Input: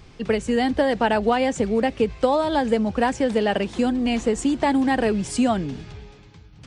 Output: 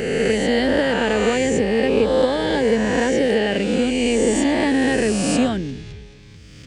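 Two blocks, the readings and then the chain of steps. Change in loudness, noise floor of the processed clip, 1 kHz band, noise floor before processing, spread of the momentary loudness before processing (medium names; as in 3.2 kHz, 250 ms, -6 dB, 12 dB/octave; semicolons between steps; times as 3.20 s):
+3.0 dB, -42 dBFS, -3.0 dB, -47 dBFS, 4 LU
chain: reverse spectral sustain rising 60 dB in 2.16 s; high-order bell 940 Hz -8.5 dB 1.3 oct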